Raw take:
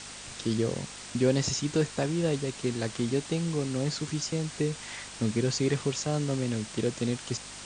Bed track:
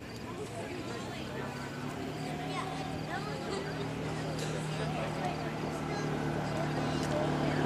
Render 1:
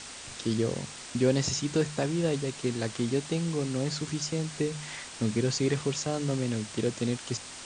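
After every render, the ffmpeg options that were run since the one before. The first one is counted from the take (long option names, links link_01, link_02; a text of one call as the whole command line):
ffmpeg -i in.wav -af "bandreject=frequency=50:width_type=h:width=4,bandreject=frequency=100:width_type=h:width=4,bandreject=frequency=150:width_type=h:width=4,bandreject=frequency=200:width_type=h:width=4" out.wav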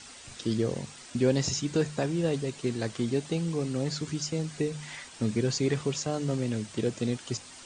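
ffmpeg -i in.wav -af "afftdn=noise_reduction=8:noise_floor=-44" out.wav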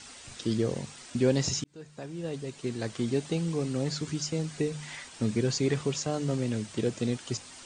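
ffmpeg -i in.wav -filter_complex "[0:a]asplit=2[link_01][link_02];[link_01]atrim=end=1.64,asetpts=PTS-STARTPTS,afade=type=out:start_time=1.636:duration=0.004:curve=hsin[link_03];[link_02]atrim=start=1.64,asetpts=PTS-STARTPTS,afade=type=in:duration=1.49[link_04];[link_03][link_04]concat=n=2:v=0:a=1" out.wav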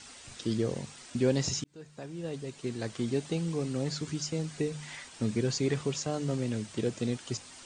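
ffmpeg -i in.wav -af "volume=-2dB" out.wav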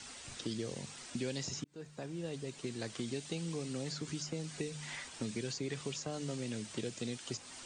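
ffmpeg -i in.wav -filter_complex "[0:a]acrossover=split=160|2100[link_01][link_02][link_03];[link_01]acompressor=threshold=-50dB:ratio=4[link_04];[link_02]acompressor=threshold=-39dB:ratio=4[link_05];[link_03]acompressor=threshold=-42dB:ratio=4[link_06];[link_04][link_05][link_06]amix=inputs=3:normalize=0" out.wav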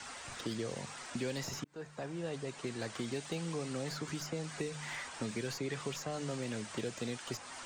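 ffmpeg -i in.wav -filter_complex "[0:a]acrossover=split=500|2200[link_01][link_02][link_03];[link_02]asplit=2[link_04][link_05];[link_05]highpass=frequency=720:poles=1,volume=19dB,asoftclip=type=tanh:threshold=-34dB[link_06];[link_04][link_06]amix=inputs=2:normalize=0,lowpass=frequency=1700:poles=1,volume=-6dB[link_07];[link_03]aeval=exprs='clip(val(0),-1,0.00631)':channel_layout=same[link_08];[link_01][link_07][link_08]amix=inputs=3:normalize=0" out.wav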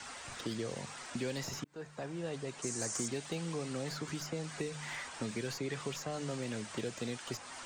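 ffmpeg -i in.wav -filter_complex "[0:a]asettb=1/sr,asplit=3[link_01][link_02][link_03];[link_01]atrim=end=2.624[link_04];[link_02]atrim=start=2.62:end=3.08,asetpts=PTS-STARTPTS,afade=type=in:duration=0.004:curve=qsin,afade=type=out:start_time=0.456:duration=0.004:curve=qsin,highshelf=frequency=4800:width_type=q:width=3:gain=10.5[link_05];[link_03]atrim=start=3.076[link_06];[link_04][link_05]acrossfade=duration=0.004:curve1=hsin:curve2=qsin[link_07];[link_07][link_06]acrossfade=duration=0.004:curve1=qsin:curve2=hsin" out.wav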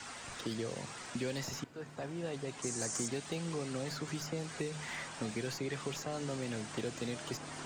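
ffmpeg -i in.wav -i bed.wav -filter_complex "[1:a]volume=-18dB[link_01];[0:a][link_01]amix=inputs=2:normalize=0" out.wav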